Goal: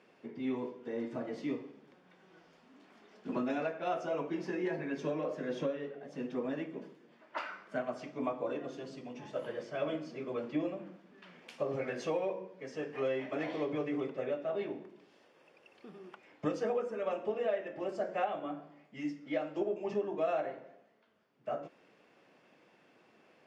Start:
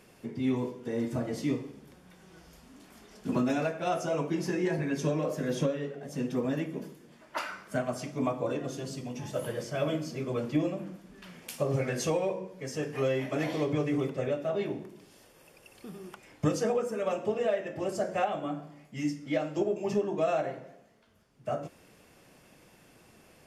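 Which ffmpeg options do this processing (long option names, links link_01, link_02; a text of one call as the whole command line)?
ffmpeg -i in.wav -af "highpass=250,lowpass=3300,volume=-4dB" out.wav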